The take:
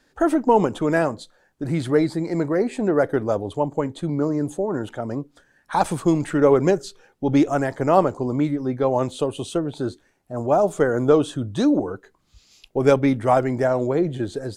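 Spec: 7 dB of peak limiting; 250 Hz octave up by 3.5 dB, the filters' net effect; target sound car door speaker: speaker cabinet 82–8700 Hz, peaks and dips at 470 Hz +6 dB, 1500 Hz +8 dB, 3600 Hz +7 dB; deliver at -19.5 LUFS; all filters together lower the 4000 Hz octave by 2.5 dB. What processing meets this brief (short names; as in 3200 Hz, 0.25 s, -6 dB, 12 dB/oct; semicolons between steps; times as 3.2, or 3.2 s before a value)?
bell 250 Hz +4 dB; bell 4000 Hz -8.5 dB; limiter -8.5 dBFS; speaker cabinet 82–8700 Hz, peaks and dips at 470 Hz +6 dB, 1500 Hz +8 dB, 3600 Hz +7 dB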